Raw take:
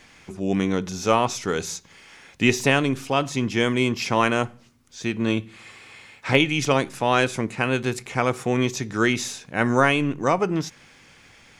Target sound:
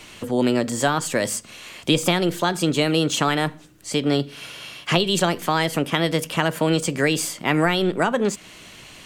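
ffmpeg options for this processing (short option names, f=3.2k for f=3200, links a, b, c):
-filter_complex "[0:a]acrossover=split=190[a][b];[b]acompressor=threshold=-21dB:ratio=4[c];[a][c]amix=inputs=2:normalize=0,asetrate=56448,aresample=44100,asplit=2[d][e];[e]acompressor=threshold=-34dB:ratio=6,volume=-1dB[f];[d][f]amix=inputs=2:normalize=0,volume=2.5dB"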